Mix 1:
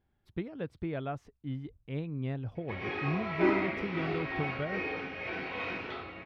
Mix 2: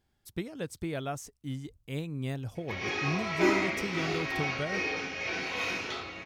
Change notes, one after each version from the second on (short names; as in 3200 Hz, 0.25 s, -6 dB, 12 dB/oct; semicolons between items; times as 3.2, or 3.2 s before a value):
master: remove air absorption 390 m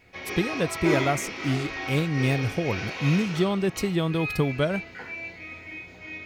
speech +10.5 dB; background: entry -2.55 s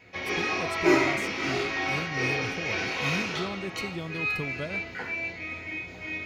speech -11.0 dB; background +4.0 dB